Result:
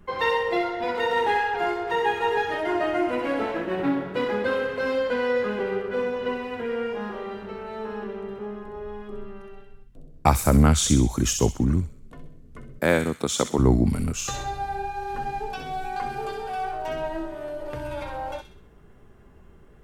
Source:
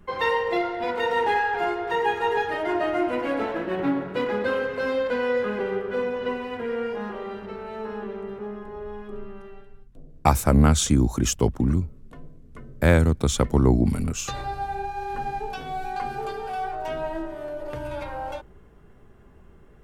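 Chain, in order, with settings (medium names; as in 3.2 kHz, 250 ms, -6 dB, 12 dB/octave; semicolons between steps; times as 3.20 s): 12.79–13.59 s: high-pass 230 Hz 12 dB/octave; feedback echo behind a high-pass 64 ms, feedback 45%, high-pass 2.6 kHz, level -4 dB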